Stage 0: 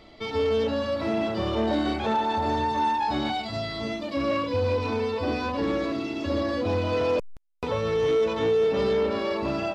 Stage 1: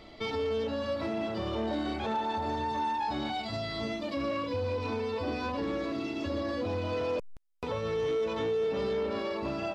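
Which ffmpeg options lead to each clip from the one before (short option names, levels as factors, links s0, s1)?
-af "alimiter=level_in=1.06:limit=0.0631:level=0:latency=1:release=446,volume=0.944"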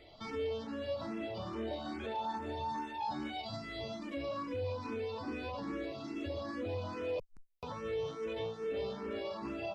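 -filter_complex "[0:a]asplit=2[s0][s1];[s1]afreqshift=2.4[s2];[s0][s2]amix=inputs=2:normalize=1,volume=0.631"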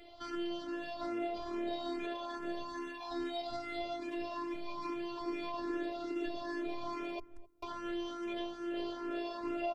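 -filter_complex "[0:a]asplit=2[s0][s1];[s1]adelay=263,lowpass=f=880:p=1,volume=0.126,asplit=2[s2][s3];[s3]adelay=263,lowpass=f=880:p=1,volume=0.21[s4];[s0][s2][s4]amix=inputs=3:normalize=0,afftfilt=real='hypot(re,im)*cos(PI*b)':imag='0':win_size=512:overlap=0.75,volume=1.78"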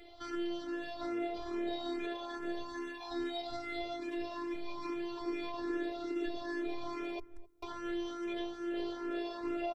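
-af "aecho=1:1:2.4:0.31"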